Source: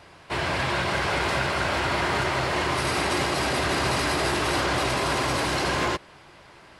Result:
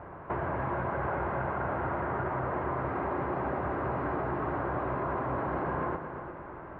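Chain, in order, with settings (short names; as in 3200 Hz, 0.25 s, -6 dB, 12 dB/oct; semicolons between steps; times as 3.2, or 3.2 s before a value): LPF 1400 Hz 24 dB/oct; compressor 4:1, threshold -39 dBFS, peak gain reduction 14 dB; multi-head echo 0.118 s, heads all three, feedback 48%, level -13 dB; gain +6.5 dB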